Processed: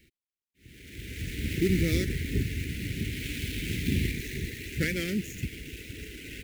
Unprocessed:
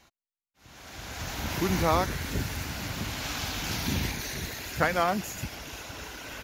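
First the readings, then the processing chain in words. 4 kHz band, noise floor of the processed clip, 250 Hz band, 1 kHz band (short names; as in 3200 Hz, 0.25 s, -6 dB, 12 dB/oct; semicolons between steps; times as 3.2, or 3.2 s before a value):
-3.5 dB, under -85 dBFS, +2.5 dB, under -25 dB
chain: median filter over 9 samples; elliptic band-stop 410–2000 Hz, stop band 70 dB; high shelf 11000 Hz +4.5 dB; gain +3.5 dB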